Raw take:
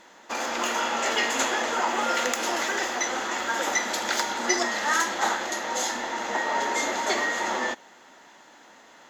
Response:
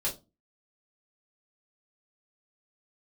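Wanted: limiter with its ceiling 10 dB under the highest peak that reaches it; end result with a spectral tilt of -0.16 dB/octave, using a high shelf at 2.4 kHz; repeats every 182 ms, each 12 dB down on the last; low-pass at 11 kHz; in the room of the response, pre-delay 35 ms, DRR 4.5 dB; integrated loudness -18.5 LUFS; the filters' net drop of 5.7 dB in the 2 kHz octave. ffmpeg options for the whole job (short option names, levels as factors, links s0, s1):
-filter_complex "[0:a]lowpass=11000,equalizer=f=2000:t=o:g=-9,highshelf=f=2400:g=4.5,alimiter=limit=0.126:level=0:latency=1,aecho=1:1:182|364|546:0.251|0.0628|0.0157,asplit=2[s0][s1];[1:a]atrim=start_sample=2205,adelay=35[s2];[s1][s2]afir=irnorm=-1:irlink=0,volume=0.335[s3];[s0][s3]amix=inputs=2:normalize=0,volume=2.51"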